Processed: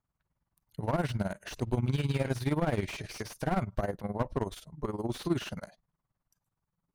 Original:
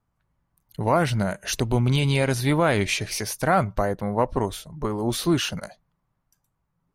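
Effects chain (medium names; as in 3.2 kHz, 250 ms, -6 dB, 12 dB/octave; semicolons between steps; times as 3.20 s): tremolo 19 Hz, depth 81%; slew-rate limiter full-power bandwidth 66 Hz; trim -5 dB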